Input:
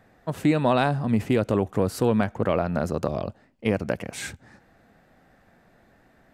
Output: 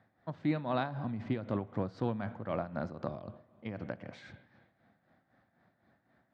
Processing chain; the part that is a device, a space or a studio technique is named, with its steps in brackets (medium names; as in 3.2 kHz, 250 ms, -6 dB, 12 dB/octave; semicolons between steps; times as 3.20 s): combo amplifier with spring reverb and tremolo (spring tank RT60 1.5 s, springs 38/53/59 ms, chirp 80 ms, DRR 14 dB; tremolo 3.9 Hz, depth 66%; cabinet simulation 97–4300 Hz, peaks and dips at 110 Hz +4 dB, 440 Hz -8 dB, 2.7 kHz -8 dB); trim -8.5 dB